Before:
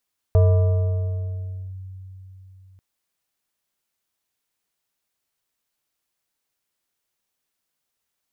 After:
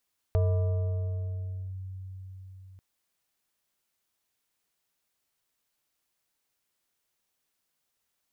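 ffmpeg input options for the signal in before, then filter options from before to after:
-f lavfi -i "aevalsrc='0.299*pow(10,-3*t/3.89)*sin(2*PI*94.4*t+0.5*clip(1-t/1.4,0,1)*sin(2*PI*5.74*94.4*t))':d=2.44:s=44100"
-af "acompressor=threshold=-41dB:ratio=1.5"

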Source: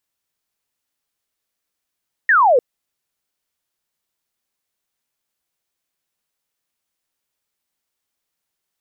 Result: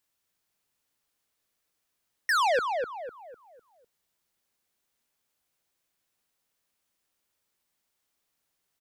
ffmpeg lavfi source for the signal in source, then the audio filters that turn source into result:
-f lavfi -i "aevalsrc='0.335*clip(t/0.002,0,1)*clip((0.3-t)/0.002,0,1)*sin(2*PI*1900*0.3/log(460/1900)*(exp(log(460/1900)*t/0.3)-1))':d=0.3:s=44100"
-filter_complex "[0:a]asoftclip=type=tanh:threshold=-23dB,asplit=2[a][b];[b]adelay=251,lowpass=f=1.5k:p=1,volume=-4dB,asplit=2[c][d];[d]adelay=251,lowpass=f=1.5k:p=1,volume=0.41,asplit=2[e][f];[f]adelay=251,lowpass=f=1.5k:p=1,volume=0.41,asplit=2[g][h];[h]adelay=251,lowpass=f=1.5k:p=1,volume=0.41,asplit=2[i][j];[j]adelay=251,lowpass=f=1.5k:p=1,volume=0.41[k];[a][c][e][g][i][k]amix=inputs=6:normalize=0"

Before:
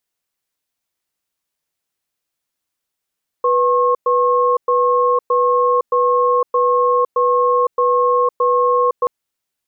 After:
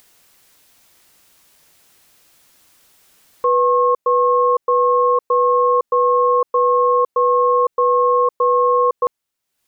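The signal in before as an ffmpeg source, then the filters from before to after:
-f lavfi -i "aevalsrc='0.188*(sin(2*PI*492*t)+sin(2*PI*1080*t))*clip(min(mod(t,0.62),0.51-mod(t,0.62))/0.005,0,1)':d=5.63:s=44100"
-af "acompressor=mode=upward:threshold=-33dB:ratio=2.5"

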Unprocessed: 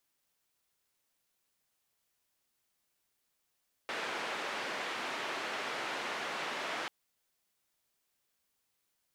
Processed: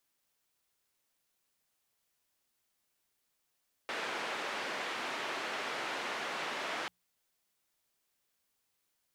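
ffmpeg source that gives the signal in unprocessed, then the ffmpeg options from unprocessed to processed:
-f lavfi -i "anoisesrc=c=white:d=2.99:r=44100:seed=1,highpass=f=320,lowpass=f=2200,volume=-22.9dB"
-af "bandreject=f=60:t=h:w=6,bandreject=f=120:t=h:w=6,bandreject=f=180:t=h:w=6"

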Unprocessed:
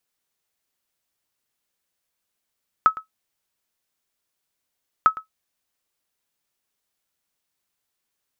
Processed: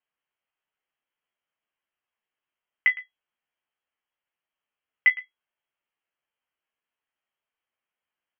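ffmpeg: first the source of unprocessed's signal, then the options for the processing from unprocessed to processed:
-f lavfi -i "aevalsrc='0.531*(sin(2*PI*1290*mod(t,2.2))*exp(-6.91*mod(t,2.2)/0.12)+0.126*sin(2*PI*1290*max(mod(t,2.2)-0.11,0))*exp(-6.91*max(mod(t,2.2)-0.11,0)/0.12))':d=4.4:s=44100"
-filter_complex "[0:a]flanger=delay=4.3:depth=4.6:regen=59:speed=1.6:shape=triangular,asplit=2[a][b];[b]aecho=0:1:14|34:0.531|0.158[c];[a][c]amix=inputs=2:normalize=0,lowpass=f=2.8k:t=q:w=0.5098,lowpass=f=2.8k:t=q:w=0.6013,lowpass=f=2.8k:t=q:w=0.9,lowpass=f=2.8k:t=q:w=2.563,afreqshift=-3300"

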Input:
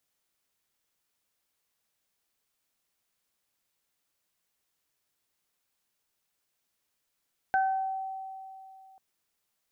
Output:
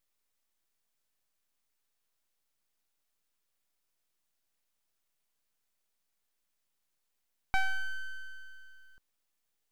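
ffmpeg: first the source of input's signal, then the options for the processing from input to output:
-f lavfi -i "aevalsrc='0.0794*pow(10,-3*t/2.77)*sin(2*PI*767*t)+0.0501*pow(10,-3*t/0.54)*sin(2*PI*1534*t)':d=1.44:s=44100"
-af "aeval=exprs='abs(val(0))':c=same"

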